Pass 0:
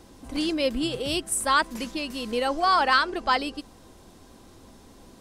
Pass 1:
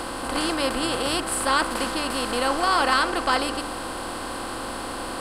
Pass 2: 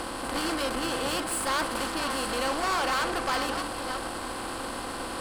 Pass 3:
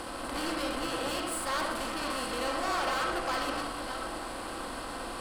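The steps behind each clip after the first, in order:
per-bin compression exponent 0.4; de-hum 74 Hz, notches 34; gain -3.5 dB
reverse delay 0.453 s, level -10 dB; tube stage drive 23 dB, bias 0.65
reverb RT60 0.50 s, pre-delay 30 ms, DRR 2 dB; gain -5.5 dB

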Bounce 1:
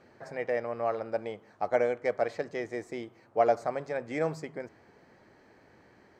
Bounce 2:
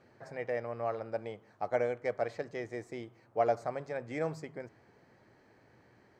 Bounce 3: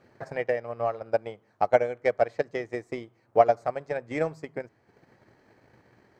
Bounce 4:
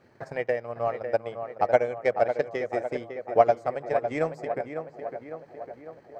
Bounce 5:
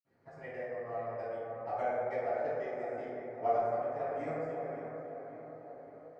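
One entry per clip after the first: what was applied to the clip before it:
bell 120 Hz +7 dB 0.44 oct; gain -4.5 dB
transient shaper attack +10 dB, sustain -6 dB; gain +2.5 dB
tape echo 0.553 s, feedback 65%, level -7 dB, low-pass 2000 Hz
reverb RT60 2.7 s, pre-delay 47 ms; gain +2.5 dB

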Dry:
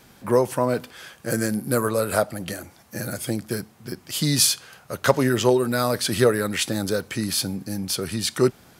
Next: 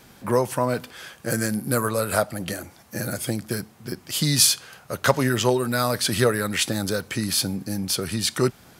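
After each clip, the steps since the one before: dynamic EQ 380 Hz, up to -5 dB, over -29 dBFS, Q 0.87; gain +1.5 dB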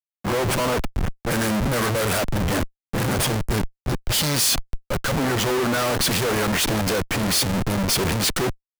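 Schmitt trigger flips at -32 dBFS; three-band expander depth 70%; gain +3.5 dB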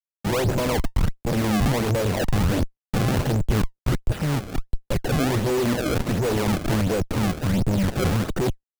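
median filter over 41 samples; decimation with a swept rate 27×, swing 160% 1.4 Hz; gain +3 dB

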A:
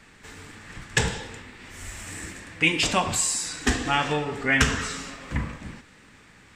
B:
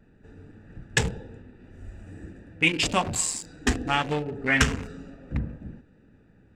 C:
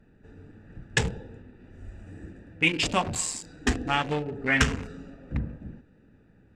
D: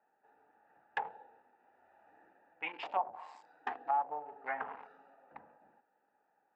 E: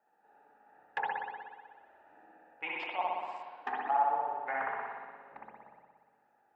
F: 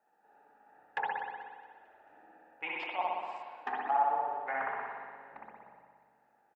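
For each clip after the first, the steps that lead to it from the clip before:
Wiener smoothing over 41 samples
high shelf 12000 Hz -10.5 dB; gain -1 dB
ladder band-pass 900 Hz, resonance 70%; treble ducked by the level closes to 780 Hz, closed at -33 dBFS; gain +3 dB
chopper 0.67 Hz, depth 65%, duty 90%; reverb RT60 1.6 s, pre-delay 59 ms, DRR -3.5 dB
feedback echo 0.221 s, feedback 55%, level -18 dB

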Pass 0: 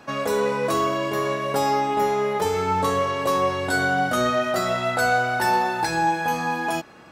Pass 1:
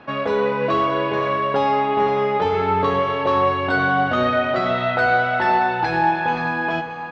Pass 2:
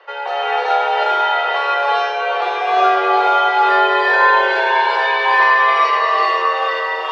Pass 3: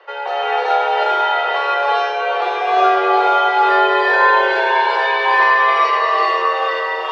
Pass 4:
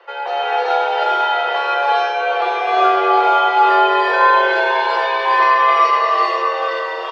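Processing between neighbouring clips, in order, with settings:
LPF 3600 Hz 24 dB/oct; on a send: tapped delay 0.524/0.623 s -10.5/-12 dB; on the sum: gain +2.5 dB
frequency shift +290 Hz; non-linear reverb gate 0.42 s rising, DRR -7 dB; gain -2.5 dB
low shelf 340 Hz +7 dB; gain -1 dB
comb 5.9 ms, depth 46%; gain -1 dB

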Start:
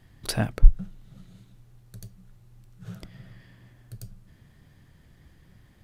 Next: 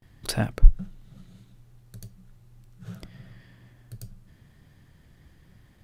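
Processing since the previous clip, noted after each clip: gate with hold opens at -49 dBFS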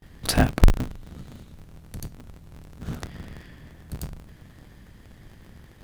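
cycle switcher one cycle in 3, inverted; limiter -13 dBFS, peak gain reduction 11.5 dB; gain +7 dB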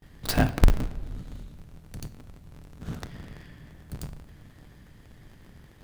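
tracing distortion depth 0.22 ms; shoebox room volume 1300 m³, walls mixed, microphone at 0.36 m; gain -3 dB

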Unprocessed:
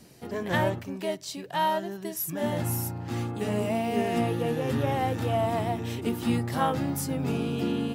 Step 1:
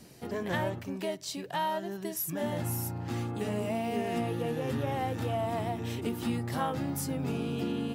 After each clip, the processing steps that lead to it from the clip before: compressor 2:1, threshold -32 dBFS, peak gain reduction 6.5 dB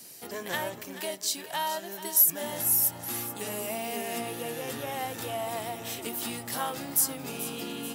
RIAA curve recording; split-band echo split 460 Hz, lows 0.21 s, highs 0.434 s, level -13 dB

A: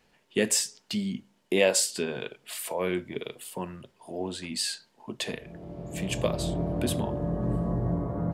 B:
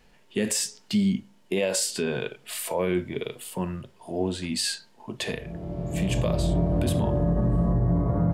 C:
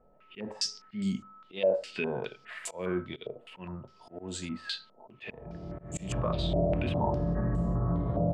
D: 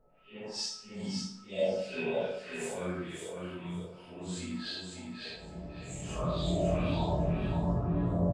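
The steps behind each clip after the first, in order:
harmonic-percussive split harmonic +7 dB; low shelf 81 Hz +11.5 dB; limiter -15.5 dBFS, peak gain reduction 10.5 dB
whine 1300 Hz -55 dBFS; auto swell 0.169 s; stepped low-pass 4.9 Hz 620–7300 Hz; gain -6.5 dB
phase scrambler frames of 0.2 s; on a send: feedback echo 0.555 s, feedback 18%, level -5 dB; on the sum: plate-style reverb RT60 0.74 s, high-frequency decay 0.75×, DRR 5 dB; gain -3.5 dB

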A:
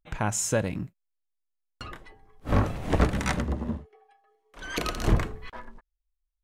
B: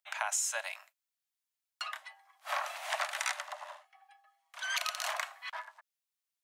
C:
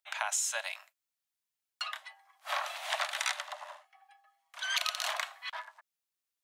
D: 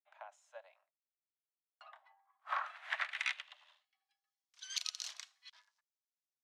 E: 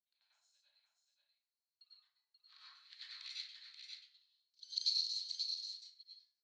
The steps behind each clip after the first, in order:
steep high-pass 600 Hz 96 dB/oct; tilt shelf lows -6 dB, about 910 Hz; compressor 6:1, threshold -30 dBFS, peak gain reduction 10 dB
dynamic EQ 3600 Hz, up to +6 dB, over -54 dBFS, Q 2
band-pass sweep 430 Hz -> 5500 Hz, 1.32–4.24; upward expander 1.5:1, over -53 dBFS; gain +1.5 dB
ladder band-pass 4400 Hz, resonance 90%; on a send: echo 0.533 s -5.5 dB; on the sum: plate-style reverb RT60 0.55 s, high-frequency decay 0.5×, pre-delay 85 ms, DRR -9 dB; gain -4 dB

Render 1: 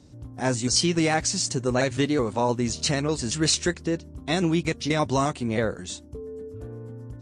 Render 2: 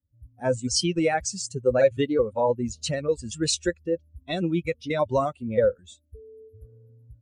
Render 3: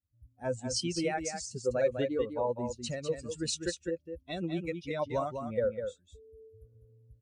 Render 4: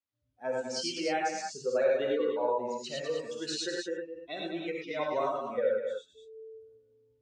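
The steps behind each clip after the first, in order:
per-bin expansion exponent 2; bell 530 Hz +14 dB 0.37 oct
vibrato 0.98 Hz 11 cents; echo 0.201 s -7 dB; gain -9 dB
BPF 380–4600 Hz; non-linear reverb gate 0.13 s rising, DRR -2 dB

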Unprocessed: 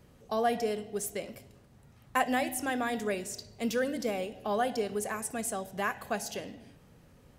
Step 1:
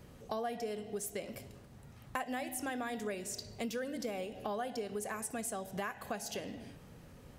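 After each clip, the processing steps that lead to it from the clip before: compressor 4:1, threshold -41 dBFS, peak gain reduction 16 dB; gain +3.5 dB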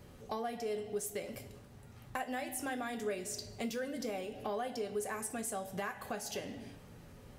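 in parallel at -5.5 dB: soft clip -32 dBFS, distortion -17 dB; on the sum: reverb, pre-delay 3 ms, DRR 6 dB; gain -4 dB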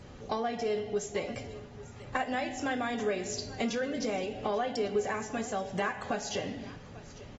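echo 0.843 s -18 dB; gain +6 dB; AAC 24 kbps 48000 Hz

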